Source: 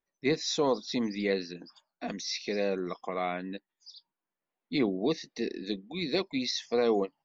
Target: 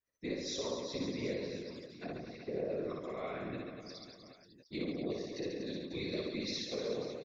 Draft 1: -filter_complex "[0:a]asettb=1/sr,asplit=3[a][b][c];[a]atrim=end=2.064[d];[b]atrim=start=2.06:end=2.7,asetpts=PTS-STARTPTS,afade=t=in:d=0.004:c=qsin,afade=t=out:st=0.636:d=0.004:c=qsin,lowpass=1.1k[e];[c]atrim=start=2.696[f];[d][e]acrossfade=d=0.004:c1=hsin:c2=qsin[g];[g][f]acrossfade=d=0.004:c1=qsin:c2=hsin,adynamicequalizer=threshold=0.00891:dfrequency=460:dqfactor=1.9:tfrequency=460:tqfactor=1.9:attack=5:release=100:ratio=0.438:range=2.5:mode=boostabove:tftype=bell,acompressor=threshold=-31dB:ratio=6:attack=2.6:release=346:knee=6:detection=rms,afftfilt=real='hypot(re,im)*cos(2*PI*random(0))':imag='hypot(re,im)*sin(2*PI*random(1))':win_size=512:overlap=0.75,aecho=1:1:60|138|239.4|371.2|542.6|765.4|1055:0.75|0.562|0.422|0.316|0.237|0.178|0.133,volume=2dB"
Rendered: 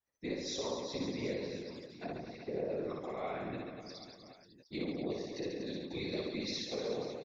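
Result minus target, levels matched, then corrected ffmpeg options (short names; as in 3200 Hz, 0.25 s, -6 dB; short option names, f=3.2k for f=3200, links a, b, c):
1000 Hz band +3.0 dB
-filter_complex "[0:a]asettb=1/sr,asplit=3[a][b][c];[a]atrim=end=2.064[d];[b]atrim=start=2.06:end=2.7,asetpts=PTS-STARTPTS,afade=t=in:d=0.004:c=qsin,afade=t=out:st=0.636:d=0.004:c=qsin,lowpass=1.1k[e];[c]atrim=start=2.696[f];[d][e]acrossfade=d=0.004:c1=hsin:c2=qsin[g];[g][f]acrossfade=d=0.004:c1=qsin:c2=hsin,adynamicequalizer=threshold=0.00891:dfrequency=460:dqfactor=1.9:tfrequency=460:tqfactor=1.9:attack=5:release=100:ratio=0.438:range=2.5:mode=boostabove:tftype=bell,acompressor=threshold=-31dB:ratio=6:attack=2.6:release=346:knee=6:detection=rms,asuperstop=centerf=810:order=4:qfactor=3,afftfilt=real='hypot(re,im)*cos(2*PI*random(0))':imag='hypot(re,im)*sin(2*PI*random(1))':win_size=512:overlap=0.75,aecho=1:1:60|138|239.4|371.2|542.6|765.4|1055:0.75|0.562|0.422|0.316|0.237|0.178|0.133,volume=2dB"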